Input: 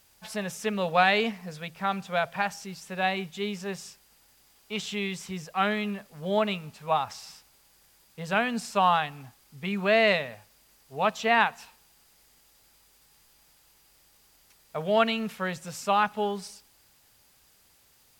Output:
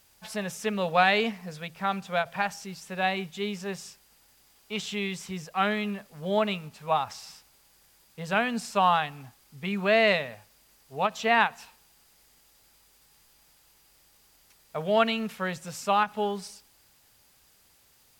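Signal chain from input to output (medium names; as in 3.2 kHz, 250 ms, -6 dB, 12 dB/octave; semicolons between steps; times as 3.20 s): endings held to a fixed fall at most 410 dB/s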